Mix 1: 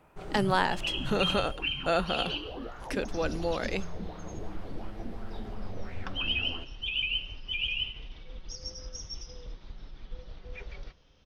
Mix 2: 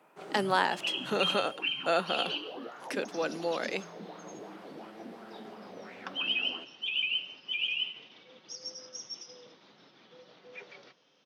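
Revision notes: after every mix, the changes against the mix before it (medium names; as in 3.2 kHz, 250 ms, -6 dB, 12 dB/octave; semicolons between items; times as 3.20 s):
master: add Bessel high-pass 280 Hz, order 8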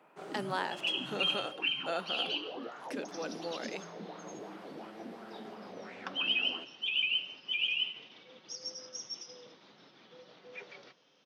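speech -8.0 dB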